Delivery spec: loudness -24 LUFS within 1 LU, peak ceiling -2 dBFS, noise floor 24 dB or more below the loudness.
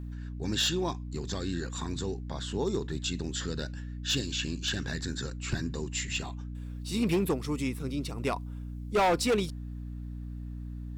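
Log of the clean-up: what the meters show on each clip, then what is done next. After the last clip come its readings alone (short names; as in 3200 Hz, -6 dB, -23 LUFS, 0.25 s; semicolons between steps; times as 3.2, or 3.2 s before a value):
clipped 1.1%; flat tops at -21.5 dBFS; hum 60 Hz; harmonics up to 300 Hz; hum level -36 dBFS; loudness -32.5 LUFS; peak -21.5 dBFS; loudness target -24.0 LUFS
-> clip repair -21.5 dBFS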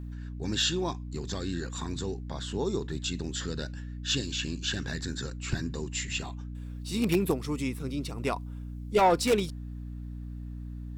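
clipped 0.0%; hum 60 Hz; harmonics up to 300 Hz; hum level -36 dBFS
-> notches 60/120/180/240/300 Hz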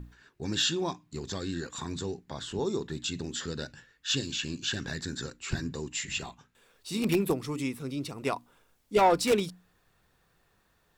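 hum none; loudness -31.5 LUFS; peak -11.5 dBFS; loudness target -24.0 LUFS
-> gain +7.5 dB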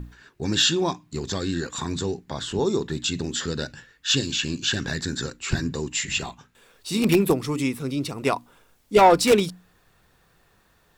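loudness -24.0 LUFS; peak -4.0 dBFS; noise floor -62 dBFS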